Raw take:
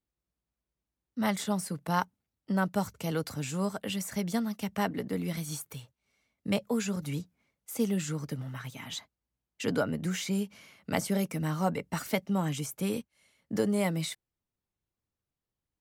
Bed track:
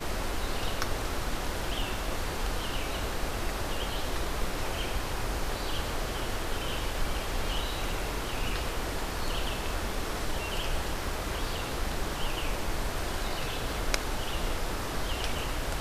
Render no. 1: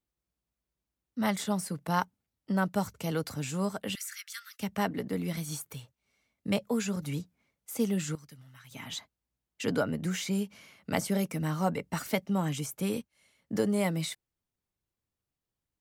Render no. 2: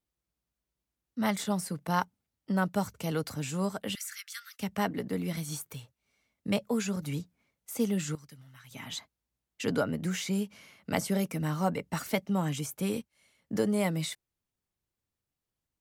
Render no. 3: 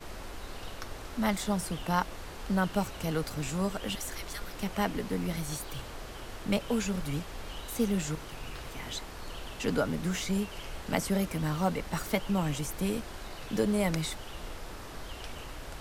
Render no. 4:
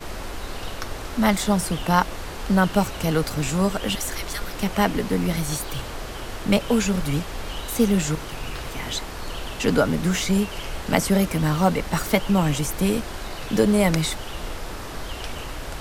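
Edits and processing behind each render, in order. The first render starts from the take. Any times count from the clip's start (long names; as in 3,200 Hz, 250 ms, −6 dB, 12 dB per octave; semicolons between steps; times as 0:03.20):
0:03.95–0:04.60: Butterworth high-pass 1,300 Hz 72 dB per octave; 0:08.15–0:08.71: guitar amp tone stack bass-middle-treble 5-5-5
tape wow and flutter 25 cents
mix in bed track −10 dB
level +9.5 dB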